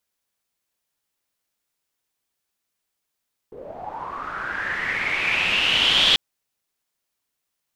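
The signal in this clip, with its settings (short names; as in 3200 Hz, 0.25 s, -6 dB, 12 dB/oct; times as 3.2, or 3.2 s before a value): swept filtered noise white, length 2.64 s lowpass, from 420 Hz, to 3400 Hz, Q 7, linear, gain ramp +14.5 dB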